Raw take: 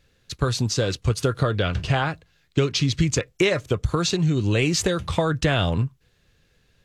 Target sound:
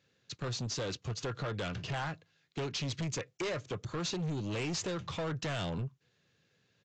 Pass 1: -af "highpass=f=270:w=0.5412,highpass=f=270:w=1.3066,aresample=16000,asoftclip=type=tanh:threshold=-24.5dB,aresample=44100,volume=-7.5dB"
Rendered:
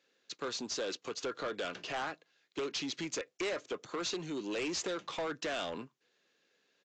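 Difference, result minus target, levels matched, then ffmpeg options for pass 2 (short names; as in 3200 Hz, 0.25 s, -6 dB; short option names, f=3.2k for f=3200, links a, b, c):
125 Hz band -16.5 dB
-af "highpass=f=110:w=0.5412,highpass=f=110:w=1.3066,aresample=16000,asoftclip=type=tanh:threshold=-24.5dB,aresample=44100,volume=-7.5dB"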